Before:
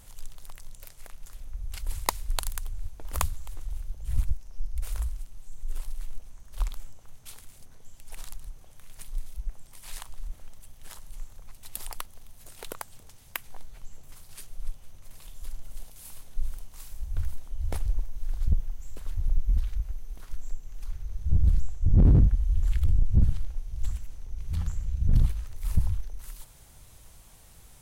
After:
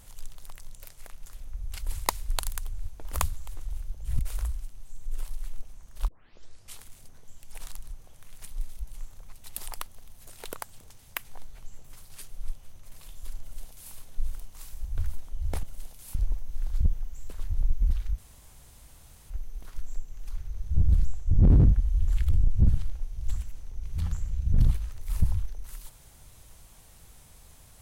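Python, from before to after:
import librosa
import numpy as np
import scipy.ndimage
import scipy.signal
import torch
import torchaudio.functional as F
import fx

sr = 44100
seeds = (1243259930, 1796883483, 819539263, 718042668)

y = fx.edit(x, sr, fx.cut(start_s=4.19, length_s=0.57),
    fx.tape_start(start_s=6.65, length_s=0.69),
    fx.cut(start_s=9.44, length_s=1.62),
    fx.duplicate(start_s=15.6, length_s=0.52, to_s=17.82),
    fx.insert_room_tone(at_s=19.85, length_s=1.12), tone=tone)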